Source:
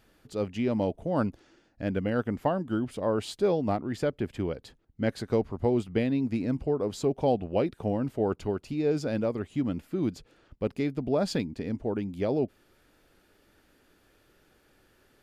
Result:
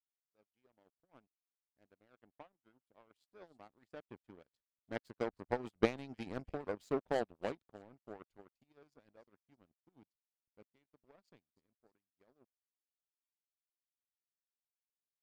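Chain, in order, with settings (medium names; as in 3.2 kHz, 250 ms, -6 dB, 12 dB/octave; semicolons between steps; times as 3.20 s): Doppler pass-by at 6.20 s, 8 m/s, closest 5.2 m; on a send: feedback echo behind a high-pass 310 ms, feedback 51%, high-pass 1.7 kHz, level -13 dB; on the sum: harmonic-percussive split harmonic -11 dB; power-law waveshaper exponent 2; trim +4.5 dB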